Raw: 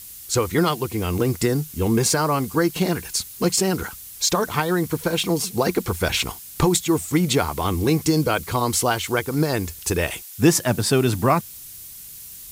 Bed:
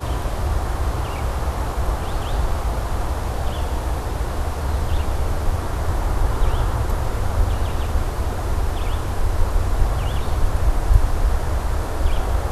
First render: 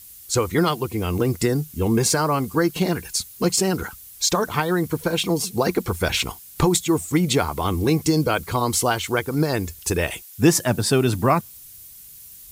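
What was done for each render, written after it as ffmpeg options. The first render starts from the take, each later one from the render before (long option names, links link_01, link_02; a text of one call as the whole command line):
ffmpeg -i in.wav -af "afftdn=noise_reduction=6:noise_floor=-40" out.wav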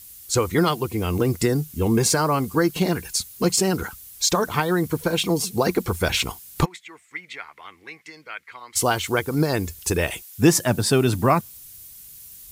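ffmpeg -i in.wav -filter_complex "[0:a]asplit=3[link_01][link_02][link_03];[link_01]afade=type=out:start_time=6.64:duration=0.02[link_04];[link_02]bandpass=frequency=2000:width_type=q:width=4.6,afade=type=in:start_time=6.64:duration=0.02,afade=type=out:start_time=8.75:duration=0.02[link_05];[link_03]afade=type=in:start_time=8.75:duration=0.02[link_06];[link_04][link_05][link_06]amix=inputs=3:normalize=0" out.wav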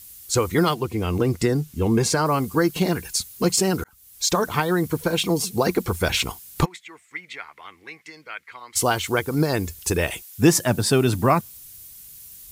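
ffmpeg -i in.wav -filter_complex "[0:a]asettb=1/sr,asplit=3[link_01][link_02][link_03];[link_01]atrim=end=0.744[link_04];[link_02]atrim=start=0.74:end=2.26,asetpts=PTS-STARTPTS,afade=type=in:duration=0.004:curve=qsin,afade=type=out:start_time=1.516:duration=0.004:curve=qsin,highshelf=frequency=9100:gain=-10.5[link_05];[link_03]atrim=start=2.256[link_06];[link_04][link_05]acrossfade=duration=0.004:curve1=hsin:curve2=qsin[link_07];[link_07][link_06]acrossfade=duration=0.004:curve1=qsin:curve2=hsin,asplit=2[link_08][link_09];[link_08]atrim=end=3.84,asetpts=PTS-STARTPTS,afade=type=out:start_time=3.836:duration=0.004:curve=hsin[link_10];[link_09]atrim=start=3.84,asetpts=PTS-STARTPTS,afade=type=in:duration=0.51[link_11];[link_10][link_11]concat=n=2:v=0:a=1" out.wav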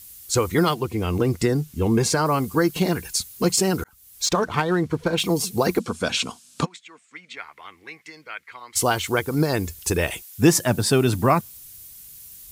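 ffmpeg -i in.wav -filter_complex "[0:a]asettb=1/sr,asplit=3[link_01][link_02][link_03];[link_01]atrim=end=4.254[link_04];[link_02]atrim=start=4.25:end=5.2,asetpts=PTS-STARTPTS,afade=type=in:duration=0.004:curve=qsin,afade=type=out:start_time=0.946:duration=0.004:curve=qsin,adynamicsmooth=sensitivity=4:basefreq=4100[link_05];[link_03]atrim=start=5.196[link_06];[link_04][link_05]acrossfade=duration=0.004:curve1=hsin:curve2=qsin[link_07];[link_07][link_06]acrossfade=duration=0.004:curve1=qsin:curve2=hsin,asettb=1/sr,asplit=3[link_08][link_09][link_10];[link_08]atrim=end=5.794[link_11];[link_09]atrim=start=5.79:end=7.37,asetpts=PTS-STARTPTS,afade=type=in:duration=0.004:curve=qsin,afade=type=out:start_time=1.576:duration=0.004:curve=qsin,highpass=180,equalizer=frequency=240:width_type=q:width=4:gain=8,equalizer=frequency=360:width_type=q:width=4:gain=-8,equalizer=frequency=850:width_type=q:width=4:gain=-6,equalizer=frequency=2000:width_type=q:width=4:gain=-9,lowpass=frequency=8700:width=0.5412,lowpass=frequency=8700:width=1.3066[link_12];[link_10]atrim=start=7.366[link_13];[link_11][link_12]acrossfade=duration=0.004:curve1=hsin:curve2=qsin[link_14];[link_14][link_13]acrossfade=duration=0.004:curve1=qsin:curve2=hsin" out.wav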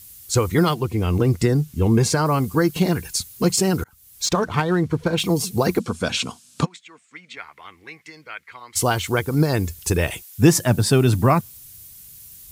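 ffmpeg -i in.wav -af "equalizer=frequency=110:width_type=o:width=1.6:gain=6" out.wav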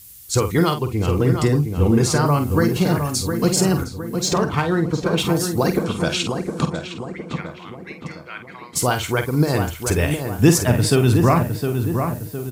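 ffmpeg -i in.wav -filter_complex "[0:a]asplit=2[link_01][link_02];[link_02]adelay=48,volume=-8.5dB[link_03];[link_01][link_03]amix=inputs=2:normalize=0,asplit=2[link_04][link_05];[link_05]adelay=711,lowpass=frequency=1900:poles=1,volume=-6dB,asplit=2[link_06][link_07];[link_07]adelay=711,lowpass=frequency=1900:poles=1,volume=0.5,asplit=2[link_08][link_09];[link_09]adelay=711,lowpass=frequency=1900:poles=1,volume=0.5,asplit=2[link_10][link_11];[link_11]adelay=711,lowpass=frequency=1900:poles=1,volume=0.5,asplit=2[link_12][link_13];[link_13]adelay=711,lowpass=frequency=1900:poles=1,volume=0.5,asplit=2[link_14][link_15];[link_15]adelay=711,lowpass=frequency=1900:poles=1,volume=0.5[link_16];[link_06][link_08][link_10][link_12][link_14][link_16]amix=inputs=6:normalize=0[link_17];[link_04][link_17]amix=inputs=2:normalize=0" out.wav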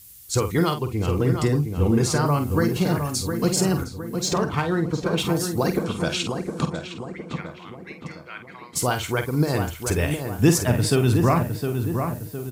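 ffmpeg -i in.wav -af "volume=-3.5dB" out.wav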